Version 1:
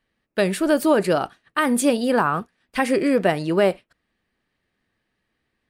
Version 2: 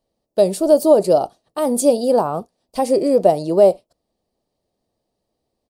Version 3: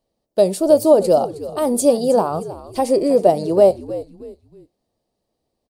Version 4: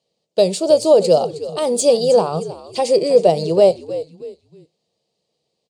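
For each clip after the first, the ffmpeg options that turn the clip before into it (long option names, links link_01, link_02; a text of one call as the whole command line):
ffmpeg -i in.wav -af "firequalizer=gain_entry='entry(240,0);entry(620,10);entry(1600,-19);entry(4600,4)':delay=0.05:min_phase=1,volume=-1dB" out.wav
ffmpeg -i in.wav -filter_complex "[0:a]asplit=4[link_01][link_02][link_03][link_04];[link_02]adelay=315,afreqshift=-76,volume=-15dB[link_05];[link_03]adelay=630,afreqshift=-152,volume=-24.6dB[link_06];[link_04]adelay=945,afreqshift=-228,volume=-34.3dB[link_07];[link_01][link_05][link_06][link_07]amix=inputs=4:normalize=0" out.wav
ffmpeg -i in.wav -af "highpass=130,equalizer=frequency=160:width_type=q:width=4:gain=9,equalizer=frequency=270:width_type=q:width=4:gain=-8,equalizer=frequency=470:width_type=q:width=4:gain=7,equalizer=frequency=5700:width_type=q:width=4:gain=-6,lowpass=frequency=6600:width=0.5412,lowpass=frequency=6600:width=1.3066,aexciter=amount=2.2:drive=8.9:freq=2300,volume=-1.5dB" out.wav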